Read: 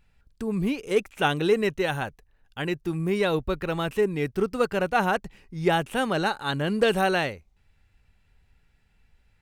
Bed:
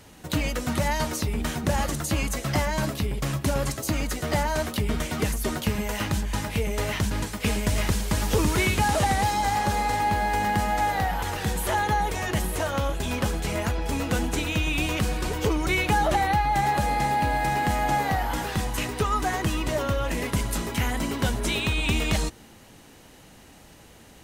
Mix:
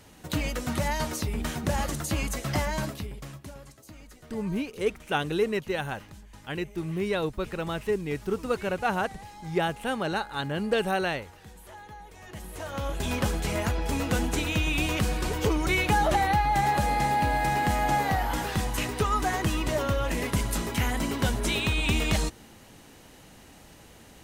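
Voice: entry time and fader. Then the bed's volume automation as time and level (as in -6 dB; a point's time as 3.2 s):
3.90 s, -4.0 dB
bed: 2.75 s -3 dB
3.65 s -21.5 dB
12.08 s -21.5 dB
13.05 s -1 dB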